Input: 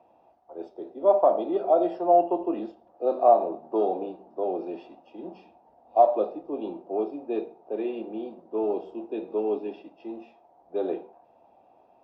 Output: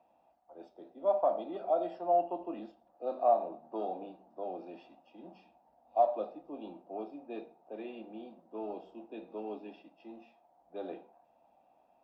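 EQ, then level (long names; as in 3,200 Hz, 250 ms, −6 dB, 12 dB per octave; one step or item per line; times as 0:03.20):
graphic EQ with 15 bands 100 Hz −10 dB, 400 Hz −11 dB, 1,000 Hz −3 dB
−5.5 dB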